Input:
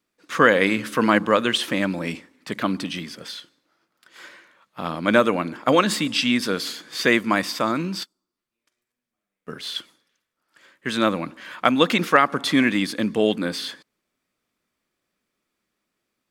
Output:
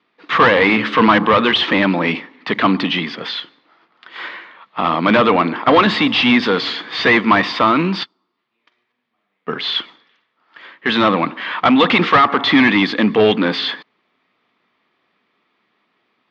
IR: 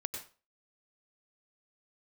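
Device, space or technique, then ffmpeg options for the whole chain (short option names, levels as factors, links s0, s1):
overdrive pedal into a guitar cabinet: -filter_complex "[0:a]asplit=2[s0][s1];[s1]highpass=f=720:p=1,volume=17.8,asoftclip=type=tanh:threshold=0.891[s2];[s0][s2]amix=inputs=2:normalize=0,lowpass=f=2100:p=1,volume=0.501,highpass=100,equalizer=f=110:t=q:w=4:g=3,equalizer=f=330:t=q:w=4:g=-3,equalizer=f=560:t=q:w=4:g=-8,equalizer=f=1500:t=q:w=4:g=-7,equalizer=f=2500:t=q:w=4:g=-3,lowpass=f=3800:w=0.5412,lowpass=f=3800:w=1.3066,volume=1.26"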